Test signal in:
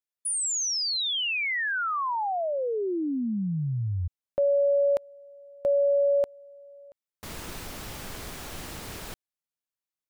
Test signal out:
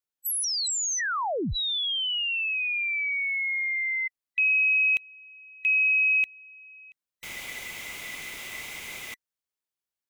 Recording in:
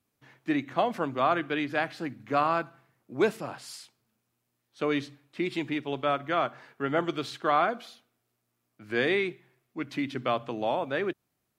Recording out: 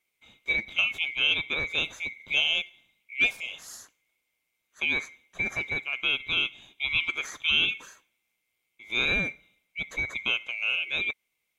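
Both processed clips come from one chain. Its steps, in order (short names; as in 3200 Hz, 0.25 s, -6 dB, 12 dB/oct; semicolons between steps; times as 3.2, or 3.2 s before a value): band-swap scrambler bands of 2000 Hz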